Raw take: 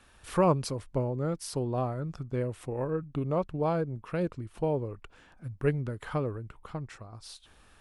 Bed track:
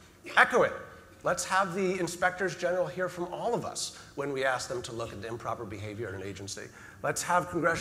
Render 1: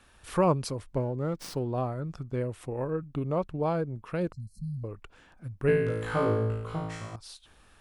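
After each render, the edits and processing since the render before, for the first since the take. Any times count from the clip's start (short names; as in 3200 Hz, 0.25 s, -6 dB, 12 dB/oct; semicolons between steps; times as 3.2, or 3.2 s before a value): 0.96–1.72 running maximum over 3 samples; 4.32–4.84 brick-wall FIR band-stop 230–4000 Hz; 5.67–7.16 flutter echo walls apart 3.1 m, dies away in 0.93 s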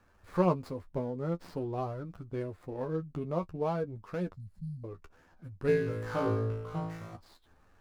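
median filter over 15 samples; flange 0.49 Hz, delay 10 ms, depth 2.5 ms, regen +28%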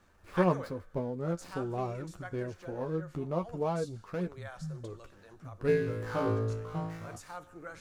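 add bed track -18 dB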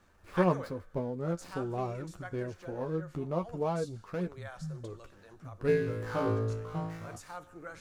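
nothing audible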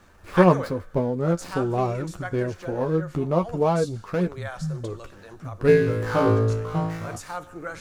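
gain +10.5 dB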